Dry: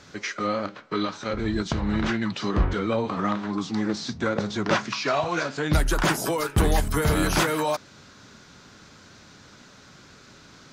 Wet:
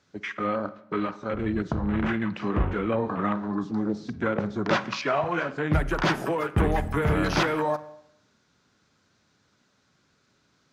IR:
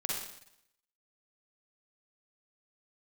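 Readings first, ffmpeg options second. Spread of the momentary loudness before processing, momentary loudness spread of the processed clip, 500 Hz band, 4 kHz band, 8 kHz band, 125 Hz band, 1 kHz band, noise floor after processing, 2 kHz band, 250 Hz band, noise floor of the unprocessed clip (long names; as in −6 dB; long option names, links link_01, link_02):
6 LU, 6 LU, −0.5 dB, −5.5 dB, −12.5 dB, −1.5 dB, −1.0 dB, −68 dBFS, −1.5 dB, −1.0 dB, −51 dBFS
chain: -filter_complex "[0:a]highpass=52,afwtdn=0.02,asplit=2[link_01][link_02];[1:a]atrim=start_sample=2205,highshelf=frequency=3900:gain=-9[link_03];[link_02][link_03]afir=irnorm=-1:irlink=0,volume=-15.5dB[link_04];[link_01][link_04]amix=inputs=2:normalize=0,volume=-2dB"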